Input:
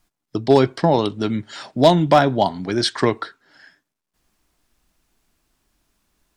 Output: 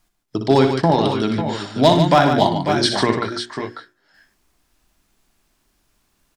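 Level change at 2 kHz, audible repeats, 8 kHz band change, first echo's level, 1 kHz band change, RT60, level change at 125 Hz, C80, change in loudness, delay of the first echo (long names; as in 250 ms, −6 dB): +3.0 dB, 4, +3.5 dB, −8.0 dB, +2.0 dB, no reverb audible, +2.0 dB, no reverb audible, +1.0 dB, 60 ms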